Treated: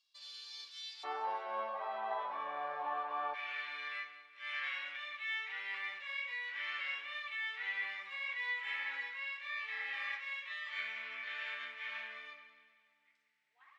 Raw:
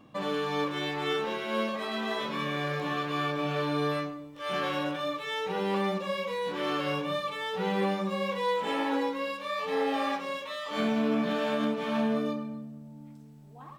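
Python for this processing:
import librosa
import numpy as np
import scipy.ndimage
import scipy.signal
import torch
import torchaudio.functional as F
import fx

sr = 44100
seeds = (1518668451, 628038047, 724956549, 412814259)

y = fx.ladder_bandpass(x, sr, hz=fx.steps((0.0, 5000.0), (1.03, 890.0), (3.33, 2200.0)), resonance_pct=70)
y = fx.echo_feedback(y, sr, ms=190, feedback_pct=55, wet_db=-15.5)
y = y * 10.0 ** (4.0 / 20.0)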